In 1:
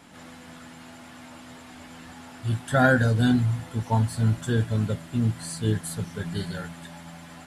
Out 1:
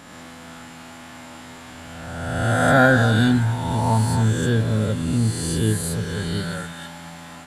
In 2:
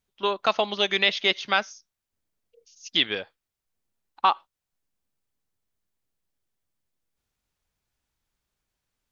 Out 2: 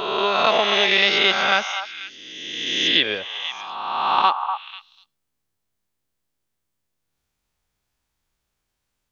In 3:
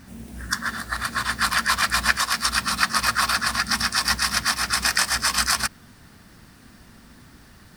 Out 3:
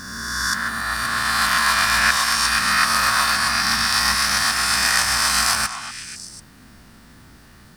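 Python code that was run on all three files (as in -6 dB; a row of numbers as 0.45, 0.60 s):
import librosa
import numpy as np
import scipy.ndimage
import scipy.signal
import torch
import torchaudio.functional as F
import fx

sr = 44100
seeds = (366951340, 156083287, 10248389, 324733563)

y = fx.spec_swells(x, sr, rise_s=1.75)
y = fx.echo_stepped(y, sr, ms=245, hz=1000.0, octaves=1.4, feedback_pct=70, wet_db=-7)
y = y * 10.0 ** (-3 / 20.0) / np.max(np.abs(y))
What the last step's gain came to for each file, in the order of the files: +2.0, +1.0, -1.5 dB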